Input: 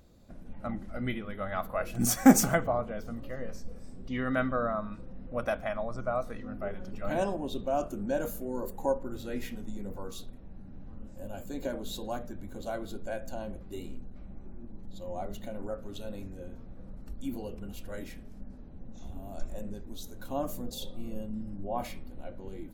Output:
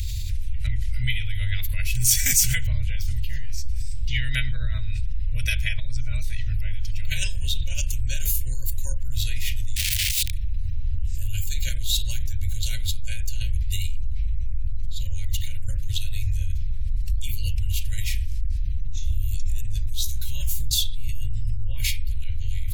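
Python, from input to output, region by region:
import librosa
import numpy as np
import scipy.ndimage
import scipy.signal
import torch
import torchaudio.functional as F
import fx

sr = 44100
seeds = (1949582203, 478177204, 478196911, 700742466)

y = fx.chain(x, sr, fx.high_shelf(hz=8500.0, db=4.0),
    fx.overflow_wrap(gain_db=38.5),
    fx.transformer_sat(knee_hz=85.0), at=(9.76, 10.33))
y = fx.chain(y, sr, fx.quant_float(bits=8),
    fx.doubler(ms=16.0, db=-2.5), at=(19.94, 20.68))
y = scipy.signal.sosfilt(scipy.signal.cheby2(4, 40, [180.0, 1300.0], 'bandstop', fs=sr, output='sos'), y)
y = fx.low_shelf(y, sr, hz=320.0, db=3.5)
y = fx.env_flatten(y, sr, amount_pct=70)
y = F.gain(torch.from_numpy(y), 5.5).numpy()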